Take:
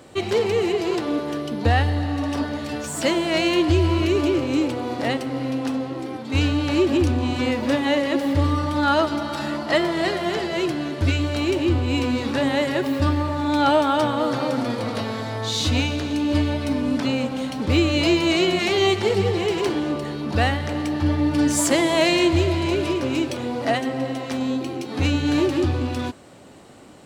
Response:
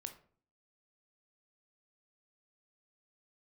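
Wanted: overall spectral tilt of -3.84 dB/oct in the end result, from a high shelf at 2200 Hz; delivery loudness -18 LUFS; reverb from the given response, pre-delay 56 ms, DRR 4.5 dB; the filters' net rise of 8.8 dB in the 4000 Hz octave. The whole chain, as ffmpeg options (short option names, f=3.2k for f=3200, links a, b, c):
-filter_complex "[0:a]highshelf=f=2.2k:g=7.5,equalizer=f=4k:t=o:g=4.5,asplit=2[a][b];[1:a]atrim=start_sample=2205,adelay=56[c];[b][c]afir=irnorm=-1:irlink=0,volume=-0.5dB[d];[a][d]amix=inputs=2:normalize=0"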